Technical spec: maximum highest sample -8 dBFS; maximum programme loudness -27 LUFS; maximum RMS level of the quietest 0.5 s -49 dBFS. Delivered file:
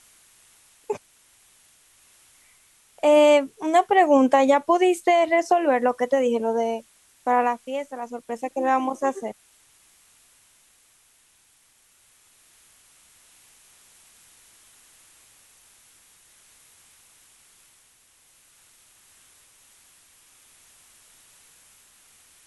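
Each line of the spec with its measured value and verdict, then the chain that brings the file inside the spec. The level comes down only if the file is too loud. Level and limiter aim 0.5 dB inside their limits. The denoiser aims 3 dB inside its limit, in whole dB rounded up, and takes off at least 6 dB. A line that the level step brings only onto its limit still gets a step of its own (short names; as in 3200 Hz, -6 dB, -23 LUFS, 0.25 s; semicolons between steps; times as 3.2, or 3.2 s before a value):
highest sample -5.5 dBFS: fail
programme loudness -21.5 LUFS: fail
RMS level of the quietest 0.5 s -60 dBFS: OK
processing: gain -6 dB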